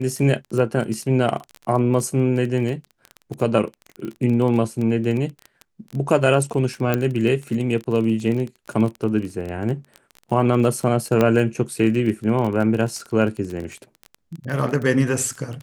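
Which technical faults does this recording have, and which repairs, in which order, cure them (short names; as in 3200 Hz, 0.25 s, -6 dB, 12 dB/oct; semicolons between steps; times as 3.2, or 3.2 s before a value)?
crackle 22/s -26 dBFS
6.94 pop -7 dBFS
11.21 pop -6 dBFS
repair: de-click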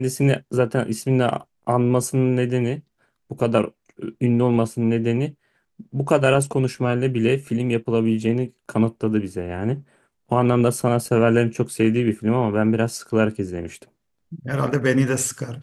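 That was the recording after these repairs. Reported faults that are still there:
none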